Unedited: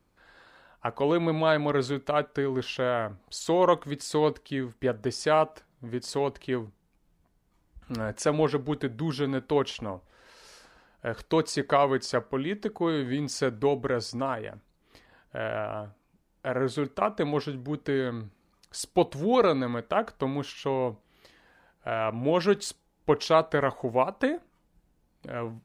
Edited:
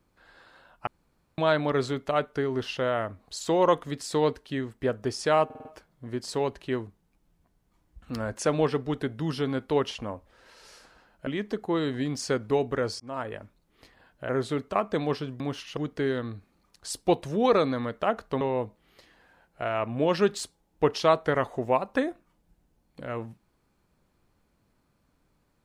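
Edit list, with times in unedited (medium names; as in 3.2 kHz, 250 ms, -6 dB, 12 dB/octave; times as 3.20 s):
0.87–1.38 s: room tone
5.45 s: stutter 0.05 s, 5 plays
11.07–12.39 s: delete
14.12–14.38 s: fade in
15.41–16.55 s: delete
20.30–20.67 s: move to 17.66 s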